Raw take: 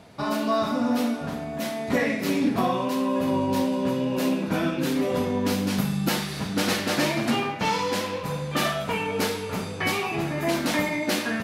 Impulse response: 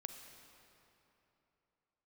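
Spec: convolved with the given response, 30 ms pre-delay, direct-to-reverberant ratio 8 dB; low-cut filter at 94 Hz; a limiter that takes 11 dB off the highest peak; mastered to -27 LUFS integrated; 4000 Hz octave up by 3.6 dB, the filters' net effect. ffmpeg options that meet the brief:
-filter_complex "[0:a]highpass=94,equalizer=f=4k:t=o:g=4.5,alimiter=limit=-21dB:level=0:latency=1,asplit=2[a][b];[1:a]atrim=start_sample=2205,adelay=30[c];[b][c]afir=irnorm=-1:irlink=0,volume=-4.5dB[d];[a][d]amix=inputs=2:normalize=0,volume=1.5dB"

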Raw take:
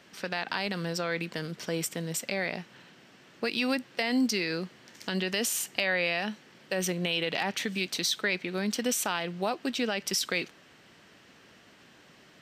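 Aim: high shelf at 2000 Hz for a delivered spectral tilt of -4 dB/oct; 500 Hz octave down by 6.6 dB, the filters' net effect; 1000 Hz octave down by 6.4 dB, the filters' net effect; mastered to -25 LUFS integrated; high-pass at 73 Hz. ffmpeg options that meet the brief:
-af "highpass=73,equalizer=f=500:t=o:g=-6.5,equalizer=f=1k:t=o:g=-5.5,highshelf=f=2k:g=-3.5,volume=8.5dB"

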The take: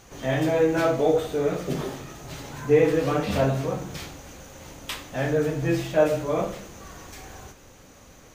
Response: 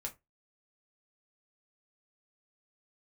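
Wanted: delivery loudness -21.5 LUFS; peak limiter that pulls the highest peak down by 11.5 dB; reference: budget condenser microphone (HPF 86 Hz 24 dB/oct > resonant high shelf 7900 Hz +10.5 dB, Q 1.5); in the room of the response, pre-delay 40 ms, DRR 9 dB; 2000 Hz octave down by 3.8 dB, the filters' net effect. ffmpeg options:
-filter_complex "[0:a]equalizer=f=2k:t=o:g=-4.5,alimiter=limit=-19dB:level=0:latency=1,asplit=2[a][b];[1:a]atrim=start_sample=2205,adelay=40[c];[b][c]afir=irnorm=-1:irlink=0,volume=-7.5dB[d];[a][d]amix=inputs=2:normalize=0,highpass=f=86:w=0.5412,highpass=f=86:w=1.3066,highshelf=f=7.9k:t=q:w=1.5:g=10.5,volume=7.5dB"

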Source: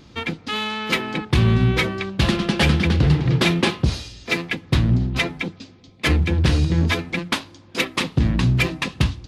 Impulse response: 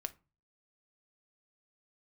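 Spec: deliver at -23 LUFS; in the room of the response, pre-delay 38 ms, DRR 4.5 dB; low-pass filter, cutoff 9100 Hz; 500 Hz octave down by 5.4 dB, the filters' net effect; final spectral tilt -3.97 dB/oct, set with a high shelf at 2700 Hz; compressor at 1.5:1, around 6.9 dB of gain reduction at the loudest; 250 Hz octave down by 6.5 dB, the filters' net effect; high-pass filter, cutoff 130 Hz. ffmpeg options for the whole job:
-filter_complex "[0:a]highpass=130,lowpass=9.1k,equalizer=f=250:t=o:g=-8,equalizer=f=500:t=o:g=-4,highshelf=f=2.7k:g=4,acompressor=threshold=-35dB:ratio=1.5,asplit=2[a][b];[1:a]atrim=start_sample=2205,adelay=38[c];[b][c]afir=irnorm=-1:irlink=0,volume=-3dB[d];[a][d]amix=inputs=2:normalize=0,volume=5dB"

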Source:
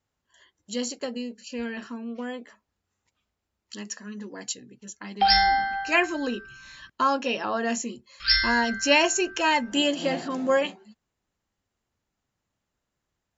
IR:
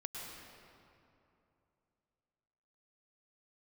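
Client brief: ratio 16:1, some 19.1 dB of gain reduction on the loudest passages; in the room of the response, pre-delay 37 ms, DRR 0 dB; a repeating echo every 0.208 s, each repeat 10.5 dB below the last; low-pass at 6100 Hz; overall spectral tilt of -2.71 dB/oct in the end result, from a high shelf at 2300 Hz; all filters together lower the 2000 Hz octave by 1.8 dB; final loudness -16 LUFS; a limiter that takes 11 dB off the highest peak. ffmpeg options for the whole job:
-filter_complex "[0:a]lowpass=6.1k,equalizer=f=2k:t=o:g=-7.5,highshelf=f=2.3k:g=9,acompressor=threshold=-31dB:ratio=16,alimiter=level_in=5dB:limit=-24dB:level=0:latency=1,volume=-5dB,aecho=1:1:208|416|624:0.299|0.0896|0.0269,asplit=2[a][b];[1:a]atrim=start_sample=2205,adelay=37[c];[b][c]afir=irnorm=-1:irlink=0,volume=0.5dB[d];[a][d]amix=inputs=2:normalize=0,volume=19.5dB"

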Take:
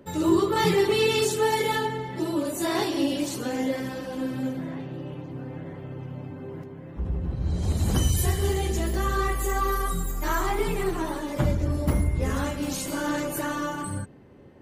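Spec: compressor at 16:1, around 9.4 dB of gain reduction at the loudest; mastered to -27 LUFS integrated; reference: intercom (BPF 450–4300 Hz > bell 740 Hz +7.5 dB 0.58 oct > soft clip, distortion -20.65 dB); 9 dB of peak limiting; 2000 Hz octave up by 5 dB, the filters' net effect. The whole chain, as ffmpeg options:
-af "equalizer=f=2k:t=o:g=6,acompressor=threshold=-26dB:ratio=16,alimiter=level_in=2.5dB:limit=-24dB:level=0:latency=1,volume=-2.5dB,highpass=450,lowpass=4.3k,equalizer=f=740:t=o:w=0.58:g=7.5,asoftclip=threshold=-28dB,volume=11.5dB"

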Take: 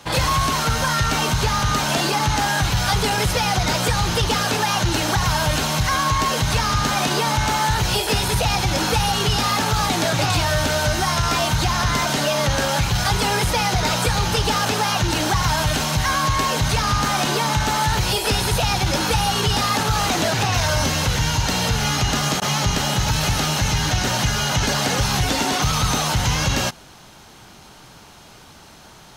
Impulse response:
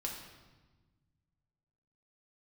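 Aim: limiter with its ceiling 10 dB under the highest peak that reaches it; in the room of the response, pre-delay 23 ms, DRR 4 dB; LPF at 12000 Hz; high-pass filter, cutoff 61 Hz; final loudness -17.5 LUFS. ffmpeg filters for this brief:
-filter_complex "[0:a]highpass=61,lowpass=12k,alimiter=limit=-18.5dB:level=0:latency=1,asplit=2[a][b];[1:a]atrim=start_sample=2205,adelay=23[c];[b][c]afir=irnorm=-1:irlink=0,volume=-4.5dB[d];[a][d]amix=inputs=2:normalize=0,volume=7dB"

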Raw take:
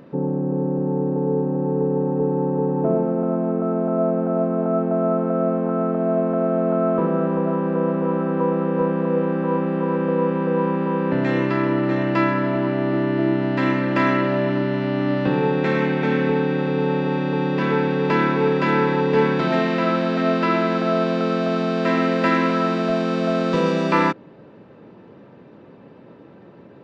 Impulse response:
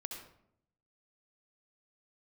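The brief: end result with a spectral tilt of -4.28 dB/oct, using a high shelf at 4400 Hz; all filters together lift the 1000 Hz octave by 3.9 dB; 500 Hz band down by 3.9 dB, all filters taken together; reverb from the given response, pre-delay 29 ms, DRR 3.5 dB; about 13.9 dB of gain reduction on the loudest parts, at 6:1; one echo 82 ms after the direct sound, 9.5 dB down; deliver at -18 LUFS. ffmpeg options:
-filter_complex "[0:a]equalizer=f=500:t=o:g=-7,equalizer=f=1k:t=o:g=7,highshelf=f=4.4k:g=-7.5,acompressor=threshold=-27dB:ratio=6,aecho=1:1:82:0.335,asplit=2[a][b];[1:a]atrim=start_sample=2205,adelay=29[c];[b][c]afir=irnorm=-1:irlink=0,volume=-2dB[d];[a][d]amix=inputs=2:normalize=0,volume=11dB"

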